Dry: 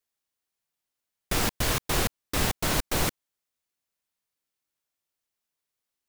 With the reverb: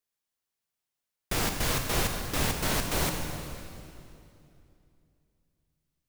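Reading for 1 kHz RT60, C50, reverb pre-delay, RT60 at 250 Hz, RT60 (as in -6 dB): 2.5 s, 4.5 dB, 22 ms, 3.2 s, 2.7 s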